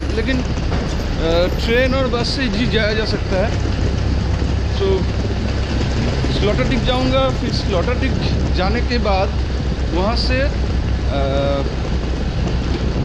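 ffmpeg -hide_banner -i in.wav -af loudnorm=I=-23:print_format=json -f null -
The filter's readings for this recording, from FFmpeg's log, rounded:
"input_i" : "-18.7",
"input_tp" : "-3.0",
"input_lra" : "1.8",
"input_thresh" : "-28.7",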